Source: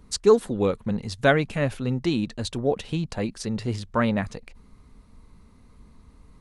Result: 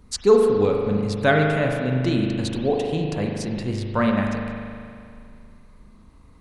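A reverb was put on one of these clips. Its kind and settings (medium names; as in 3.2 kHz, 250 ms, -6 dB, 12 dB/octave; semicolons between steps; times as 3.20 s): spring tank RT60 2.3 s, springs 39 ms, chirp 65 ms, DRR 0.5 dB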